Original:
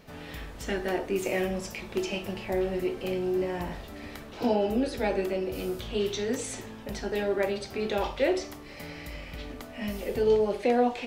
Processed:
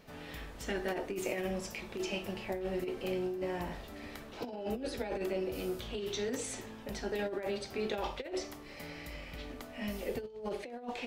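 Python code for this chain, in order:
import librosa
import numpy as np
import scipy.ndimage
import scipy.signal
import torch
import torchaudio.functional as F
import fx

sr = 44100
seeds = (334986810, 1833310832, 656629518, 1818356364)

y = fx.peak_eq(x, sr, hz=91.0, db=-3.0, octaves=1.9)
y = fx.over_compress(y, sr, threshold_db=-29.0, ratio=-0.5)
y = y * librosa.db_to_amplitude(-6.0)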